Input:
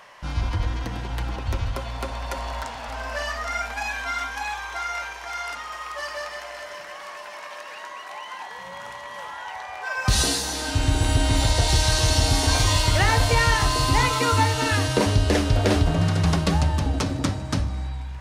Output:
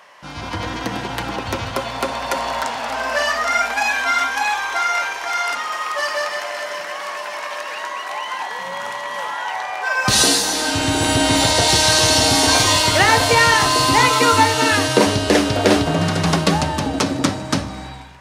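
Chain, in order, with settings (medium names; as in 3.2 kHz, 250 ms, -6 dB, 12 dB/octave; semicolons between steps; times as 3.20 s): high-pass 190 Hz 12 dB/octave; level rider gain up to 9 dB; trim +1 dB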